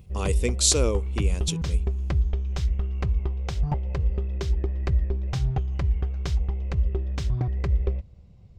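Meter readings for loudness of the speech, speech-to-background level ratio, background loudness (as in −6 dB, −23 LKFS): −25.5 LKFS, 2.0 dB, −27.5 LKFS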